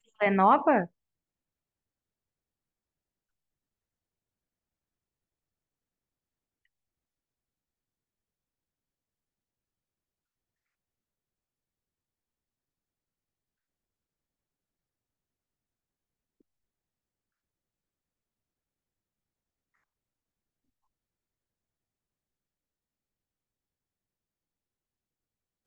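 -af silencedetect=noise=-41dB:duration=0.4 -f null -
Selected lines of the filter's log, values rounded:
silence_start: 0.86
silence_end: 25.67 | silence_duration: 24.81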